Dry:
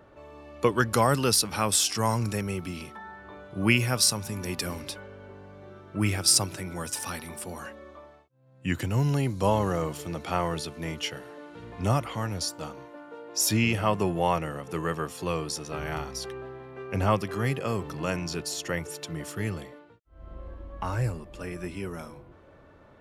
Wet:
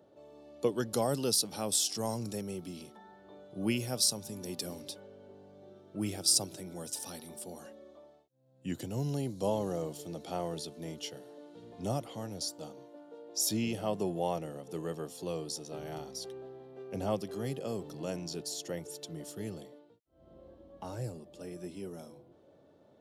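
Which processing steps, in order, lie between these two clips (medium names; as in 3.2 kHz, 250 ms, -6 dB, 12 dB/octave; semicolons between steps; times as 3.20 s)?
high-pass 160 Hz 12 dB/octave; high-order bell 1.6 kHz -12 dB; trim -5.5 dB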